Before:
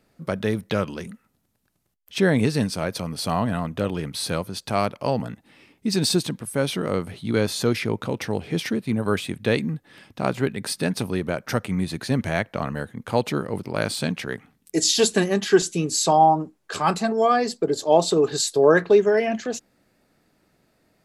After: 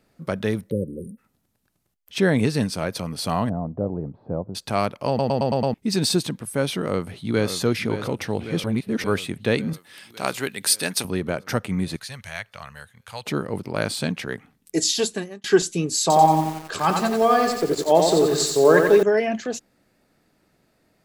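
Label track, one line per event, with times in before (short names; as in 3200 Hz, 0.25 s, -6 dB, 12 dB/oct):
0.700000	1.180000	spectral delete 560–8500 Hz
3.490000	4.550000	Chebyshev low-pass 760 Hz, order 3
5.080000	5.080000	stutter in place 0.11 s, 6 plays
6.810000	7.510000	echo throw 0.56 s, feedback 70%, level -9.5 dB
8.640000	9.040000	reverse
9.730000	11.050000	tilt +3.5 dB/oct
11.960000	13.260000	passive tone stack bass-middle-treble 10-0-10
14.770000	15.440000	fade out
16.010000	19.030000	lo-fi delay 89 ms, feedback 55%, word length 6-bit, level -4 dB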